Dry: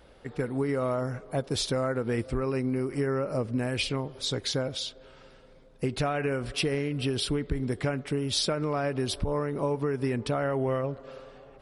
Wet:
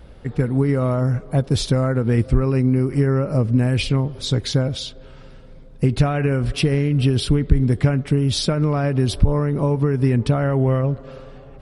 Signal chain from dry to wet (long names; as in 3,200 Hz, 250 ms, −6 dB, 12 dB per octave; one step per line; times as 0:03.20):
bass and treble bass +12 dB, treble −1 dB
level +4.5 dB